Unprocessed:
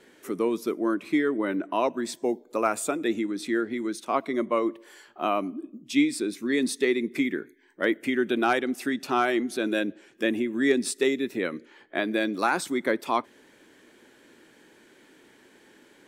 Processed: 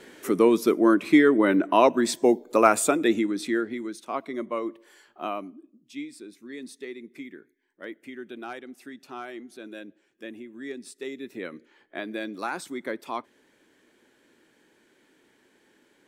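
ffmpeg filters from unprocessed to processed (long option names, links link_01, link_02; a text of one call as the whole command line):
ffmpeg -i in.wav -af "volume=14.5dB,afade=type=out:start_time=2.66:duration=1.26:silence=0.251189,afade=type=out:start_time=5.26:duration=0.4:silence=0.334965,afade=type=in:start_time=10.95:duration=0.47:silence=0.421697" out.wav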